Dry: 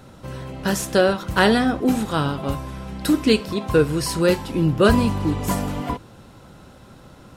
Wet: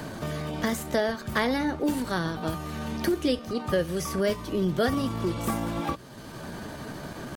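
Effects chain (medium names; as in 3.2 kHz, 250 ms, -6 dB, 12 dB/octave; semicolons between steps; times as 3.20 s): pitch shift +2.5 st; three bands compressed up and down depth 70%; trim -7.5 dB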